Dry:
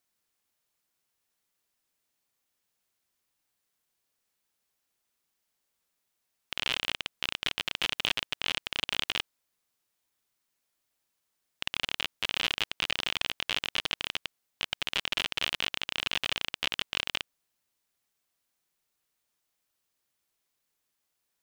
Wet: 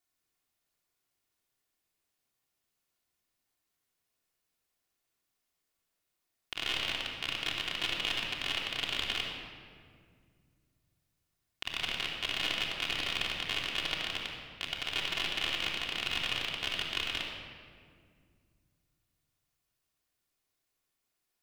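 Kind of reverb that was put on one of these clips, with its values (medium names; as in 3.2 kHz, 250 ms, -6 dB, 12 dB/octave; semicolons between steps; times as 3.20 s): simulated room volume 3800 m³, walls mixed, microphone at 3.3 m; trim -6 dB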